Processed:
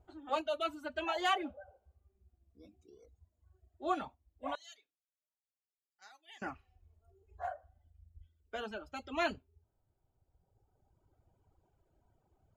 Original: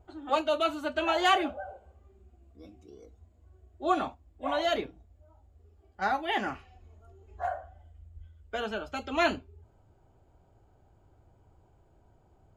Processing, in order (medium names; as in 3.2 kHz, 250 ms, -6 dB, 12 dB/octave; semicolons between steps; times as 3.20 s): 4.55–6.42 s: band-pass filter 6.9 kHz, Q 2; reverb removal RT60 1.9 s; trim -7 dB